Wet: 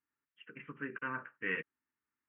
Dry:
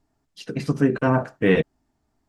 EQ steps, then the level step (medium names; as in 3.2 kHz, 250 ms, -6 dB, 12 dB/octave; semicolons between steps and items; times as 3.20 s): band-pass filter 2.2 kHz, Q 0.68; elliptic low-pass 3 kHz, stop band 40 dB; static phaser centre 1.7 kHz, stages 4; -7.0 dB